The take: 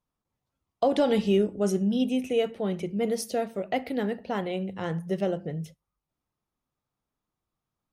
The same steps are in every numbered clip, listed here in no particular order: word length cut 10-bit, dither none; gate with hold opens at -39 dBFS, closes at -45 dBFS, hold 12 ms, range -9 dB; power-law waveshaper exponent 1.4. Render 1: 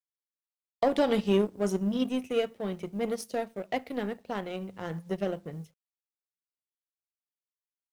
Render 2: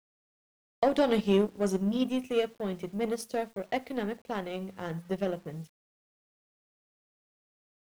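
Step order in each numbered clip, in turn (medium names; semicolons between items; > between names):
gate with hold > word length cut > power-law waveshaper; power-law waveshaper > gate with hold > word length cut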